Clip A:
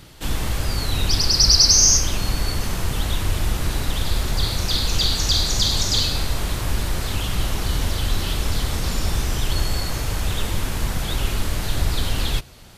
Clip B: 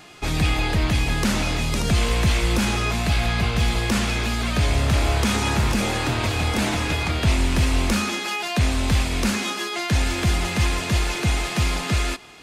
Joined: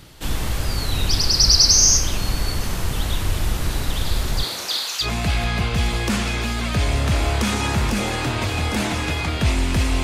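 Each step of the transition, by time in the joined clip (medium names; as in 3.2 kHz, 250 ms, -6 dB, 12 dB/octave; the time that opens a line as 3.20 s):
clip A
4.42–5.08 s: high-pass 230 Hz -> 1.4 kHz
5.04 s: go over to clip B from 2.86 s, crossfade 0.08 s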